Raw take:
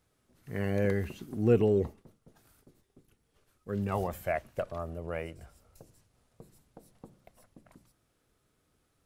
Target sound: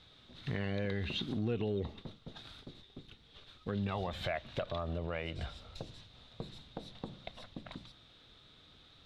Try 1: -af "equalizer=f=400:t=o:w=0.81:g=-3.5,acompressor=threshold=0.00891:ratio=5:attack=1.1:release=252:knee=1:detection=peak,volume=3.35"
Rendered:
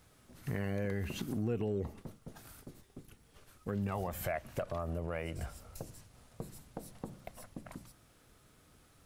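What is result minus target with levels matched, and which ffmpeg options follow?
4 kHz band -10.0 dB
-af "lowpass=f=3700:t=q:w=9.1,equalizer=f=400:t=o:w=0.81:g=-3.5,acompressor=threshold=0.00891:ratio=5:attack=1.1:release=252:knee=1:detection=peak,volume=3.35"

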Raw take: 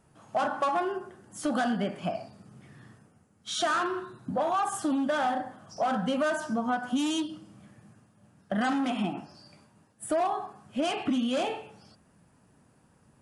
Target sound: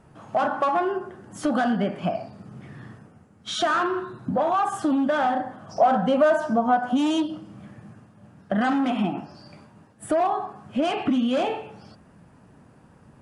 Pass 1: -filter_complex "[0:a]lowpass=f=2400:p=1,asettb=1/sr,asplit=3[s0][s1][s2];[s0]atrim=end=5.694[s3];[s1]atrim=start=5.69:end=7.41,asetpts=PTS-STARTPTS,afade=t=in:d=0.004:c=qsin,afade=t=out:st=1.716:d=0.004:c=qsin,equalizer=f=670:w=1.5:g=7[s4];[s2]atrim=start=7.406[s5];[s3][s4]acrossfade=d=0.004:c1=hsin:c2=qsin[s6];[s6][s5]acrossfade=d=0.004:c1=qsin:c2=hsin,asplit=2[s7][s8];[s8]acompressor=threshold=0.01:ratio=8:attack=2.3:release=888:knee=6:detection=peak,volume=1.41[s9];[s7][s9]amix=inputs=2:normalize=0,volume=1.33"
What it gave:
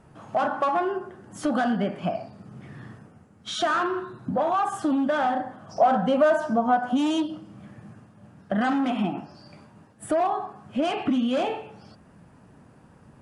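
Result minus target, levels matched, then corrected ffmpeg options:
compression: peak gain reduction +5.5 dB
-filter_complex "[0:a]lowpass=f=2400:p=1,asettb=1/sr,asplit=3[s0][s1][s2];[s0]atrim=end=5.694[s3];[s1]atrim=start=5.69:end=7.41,asetpts=PTS-STARTPTS,afade=t=in:d=0.004:c=qsin,afade=t=out:st=1.716:d=0.004:c=qsin,equalizer=f=670:w=1.5:g=7[s4];[s2]atrim=start=7.406[s5];[s3][s4]acrossfade=d=0.004:c1=hsin:c2=qsin[s6];[s6][s5]acrossfade=d=0.004:c1=qsin:c2=hsin,asplit=2[s7][s8];[s8]acompressor=threshold=0.0211:ratio=8:attack=2.3:release=888:knee=6:detection=peak,volume=1.41[s9];[s7][s9]amix=inputs=2:normalize=0,volume=1.33"

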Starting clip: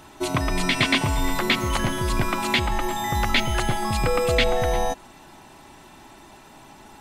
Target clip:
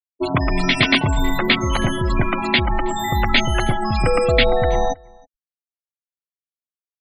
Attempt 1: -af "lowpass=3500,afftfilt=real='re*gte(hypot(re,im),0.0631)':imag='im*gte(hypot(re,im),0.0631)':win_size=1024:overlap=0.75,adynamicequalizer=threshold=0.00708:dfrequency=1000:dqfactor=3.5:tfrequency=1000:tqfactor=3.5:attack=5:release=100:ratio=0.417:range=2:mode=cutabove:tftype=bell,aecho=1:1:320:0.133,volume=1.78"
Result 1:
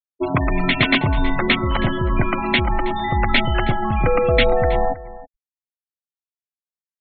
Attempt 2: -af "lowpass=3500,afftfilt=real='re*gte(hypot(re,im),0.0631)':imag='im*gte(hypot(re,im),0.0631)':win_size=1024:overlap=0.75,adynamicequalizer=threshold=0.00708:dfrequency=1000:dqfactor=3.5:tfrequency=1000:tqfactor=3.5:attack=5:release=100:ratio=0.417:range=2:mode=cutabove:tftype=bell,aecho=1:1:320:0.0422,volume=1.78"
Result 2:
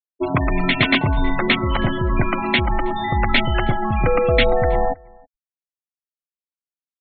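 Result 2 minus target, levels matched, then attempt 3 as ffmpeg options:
4 kHz band -2.5 dB
-af "afftfilt=real='re*gte(hypot(re,im),0.0631)':imag='im*gte(hypot(re,im),0.0631)':win_size=1024:overlap=0.75,adynamicequalizer=threshold=0.00708:dfrequency=1000:dqfactor=3.5:tfrequency=1000:tqfactor=3.5:attack=5:release=100:ratio=0.417:range=2:mode=cutabove:tftype=bell,aecho=1:1:320:0.0422,volume=1.78"

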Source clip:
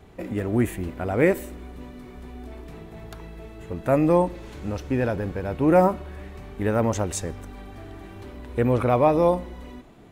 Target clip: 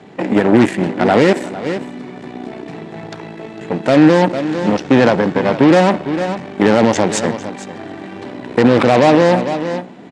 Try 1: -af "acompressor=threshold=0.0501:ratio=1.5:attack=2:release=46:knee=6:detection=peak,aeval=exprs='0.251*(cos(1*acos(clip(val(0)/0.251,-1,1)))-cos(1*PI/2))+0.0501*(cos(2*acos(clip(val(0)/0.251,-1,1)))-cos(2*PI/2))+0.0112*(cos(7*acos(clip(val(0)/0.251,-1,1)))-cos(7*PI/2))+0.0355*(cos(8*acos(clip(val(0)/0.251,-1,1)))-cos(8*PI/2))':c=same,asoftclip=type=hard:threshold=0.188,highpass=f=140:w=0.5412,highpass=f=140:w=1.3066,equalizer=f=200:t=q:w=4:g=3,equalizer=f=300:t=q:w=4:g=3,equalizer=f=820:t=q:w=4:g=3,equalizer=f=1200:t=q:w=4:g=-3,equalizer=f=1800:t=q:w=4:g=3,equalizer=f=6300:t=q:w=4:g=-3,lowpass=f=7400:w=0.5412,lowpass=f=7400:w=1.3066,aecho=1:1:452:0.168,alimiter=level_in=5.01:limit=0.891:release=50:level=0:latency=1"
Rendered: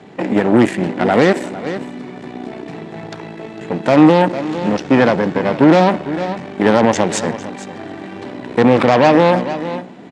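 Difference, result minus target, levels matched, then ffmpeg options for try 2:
compression: peak gain reduction +5.5 dB
-af "aeval=exprs='0.251*(cos(1*acos(clip(val(0)/0.251,-1,1)))-cos(1*PI/2))+0.0501*(cos(2*acos(clip(val(0)/0.251,-1,1)))-cos(2*PI/2))+0.0112*(cos(7*acos(clip(val(0)/0.251,-1,1)))-cos(7*PI/2))+0.0355*(cos(8*acos(clip(val(0)/0.251,-1,1)))-cos(8*PI/2))':c=same,asoftclip=type=hard:threshold=0.188,highpass=f=140:w=0.5412,highpass=f=140:w=1.3066,equalizer=f=200:t=q:w=4:g=3,equalizer=f=300:t=q:w=4:g=3,equalizer=f=820:t=q:w=4:g=3,equalizer=f=1200:t=q:w=4:g=-3,equalizer=f=1800:t=q:w=4:g=3,equalizer=f=6300:t=q:w=4:g=-3,lowpass=f=7400:w=0.5412,lowpass=f=7400:w=1.3066,aecho=1:1:452:0.168,alimiter=level_in=5.01:limit=0.891:release=50:level=0:latency=1"

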